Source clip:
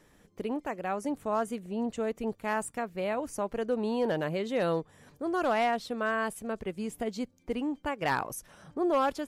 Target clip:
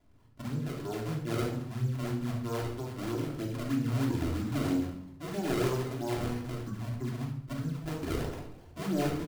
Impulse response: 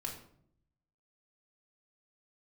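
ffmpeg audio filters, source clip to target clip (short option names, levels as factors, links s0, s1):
-filter_complex "[0:a]asetrate=24046,aresample=44100,atempo=1.83401,aecho=1:1:70|140|210|280|350:0.447|0.174|0.0679|0.0265|0.0103,acrusher=samples=30:mix=1:aa=0.000001:lfo=1:lforange=48:lforate=3.1[s0];[1:a]atrim=start_sample=2205[s1];[s0][s1]afir=irnorm=-1:irlink=0,volume=0.596"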